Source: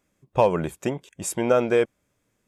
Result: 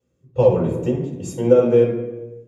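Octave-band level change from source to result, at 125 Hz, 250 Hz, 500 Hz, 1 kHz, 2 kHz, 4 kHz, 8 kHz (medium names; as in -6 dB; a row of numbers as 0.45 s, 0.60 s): +9.5 dB, +6.5 dB, +6.5 dB, -5.0 dB, -7.5 dB, no reading, -7.0 dB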